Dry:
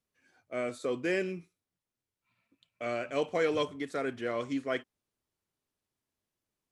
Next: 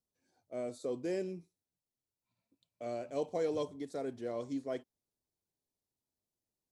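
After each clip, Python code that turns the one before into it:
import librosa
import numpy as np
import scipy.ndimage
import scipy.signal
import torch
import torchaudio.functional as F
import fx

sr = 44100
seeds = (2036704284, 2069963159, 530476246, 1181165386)

y = fx.band_shelf(x, sr, hz=1900.0, db=-12.5, octaves=1.7)
y = y * 10.0 ** (-4.5 / 20.0)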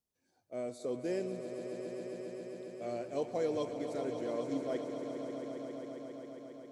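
y = fx.echo_swell(x, sr, ms=135, loudest=5, wet_db=-11)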